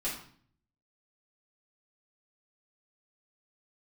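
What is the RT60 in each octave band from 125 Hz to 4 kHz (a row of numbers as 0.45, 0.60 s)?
0.85, 0.75, 0.55, 0.50, 0.50, 0.45 s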